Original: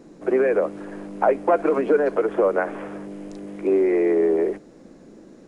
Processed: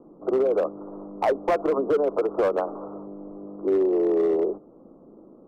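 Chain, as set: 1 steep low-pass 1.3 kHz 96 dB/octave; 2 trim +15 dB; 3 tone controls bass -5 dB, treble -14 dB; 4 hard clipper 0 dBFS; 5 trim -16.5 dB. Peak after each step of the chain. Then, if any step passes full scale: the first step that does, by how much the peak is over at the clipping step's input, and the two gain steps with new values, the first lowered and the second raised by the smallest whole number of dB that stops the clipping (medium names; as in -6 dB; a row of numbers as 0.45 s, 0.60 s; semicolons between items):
-5.5 dBFS, +9.5 dBFS, +9.0 dBFS, 0.0 dBFS, -16.5 dBFS; step 2, 9.0 dB; step 2 +6 dB, step 5 -7.5 dB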